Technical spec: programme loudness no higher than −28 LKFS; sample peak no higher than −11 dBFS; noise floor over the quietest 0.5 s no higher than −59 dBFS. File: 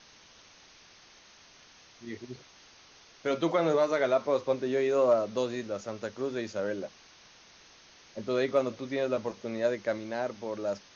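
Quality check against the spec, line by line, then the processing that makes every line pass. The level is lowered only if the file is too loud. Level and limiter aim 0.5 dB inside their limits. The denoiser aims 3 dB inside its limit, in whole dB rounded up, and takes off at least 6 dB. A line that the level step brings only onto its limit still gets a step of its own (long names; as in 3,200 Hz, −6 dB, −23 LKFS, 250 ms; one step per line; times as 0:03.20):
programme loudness −30.0 LKFS: in spec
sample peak −14.5 dBFS: in spec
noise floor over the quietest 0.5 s −56 dBFS: out of spec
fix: broadband denoise 6 dB, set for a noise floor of −56 dBFS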